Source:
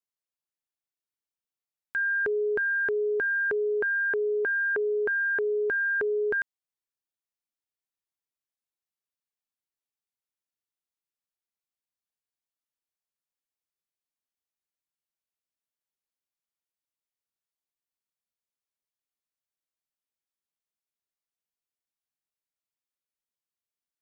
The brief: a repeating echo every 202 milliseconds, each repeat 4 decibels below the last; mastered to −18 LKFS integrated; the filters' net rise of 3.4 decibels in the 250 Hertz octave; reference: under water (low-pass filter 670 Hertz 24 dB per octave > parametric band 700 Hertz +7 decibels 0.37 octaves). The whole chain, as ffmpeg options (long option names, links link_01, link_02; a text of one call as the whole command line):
ffmpeg -i in.wav -af "lowpass=frequency=670:width=0.5412,lowpass=frequency=670:width=1.3066,equalizer=frequency=250:width_type=o:gain=7.5,equalizer=frequency=700:width_type=o:width=0.37:gain=7,aecho=1:1:202|404|606|808|1010|1212|1414|1616|1818:0.631|0.398|0.25|0.158|0.0994|0.0626|0.0394|0.0249|0.0157,volume=8dB" out.wav